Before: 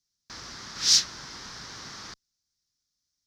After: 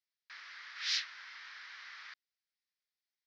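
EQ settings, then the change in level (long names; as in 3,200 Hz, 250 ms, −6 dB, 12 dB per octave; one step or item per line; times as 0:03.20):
high-pass with resonance 2,000 Hz, resonance Q 2
high-frequency loss of the air 330 metres
−2.0 dB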